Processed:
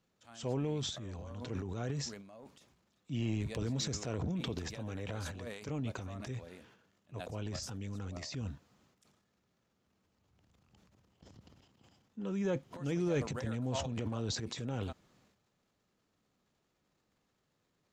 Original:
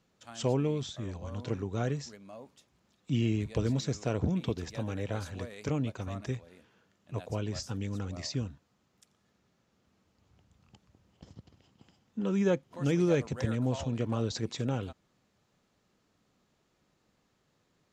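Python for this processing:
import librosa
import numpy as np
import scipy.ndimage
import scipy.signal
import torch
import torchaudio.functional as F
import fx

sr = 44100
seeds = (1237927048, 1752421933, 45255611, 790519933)

y = fx.transient(x, sr, attack_db=-3, sustain_db=11)
y = y * librosa.db_to_amplitude(-6.5)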